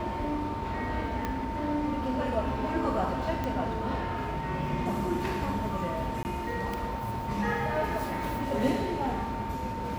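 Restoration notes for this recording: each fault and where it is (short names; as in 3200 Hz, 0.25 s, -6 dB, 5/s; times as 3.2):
tone 910 Hz -35 dBFS
1.25 pop -17 dBFS
3.44 pop -19 dBFS
6.23–6.25 gap 19 ms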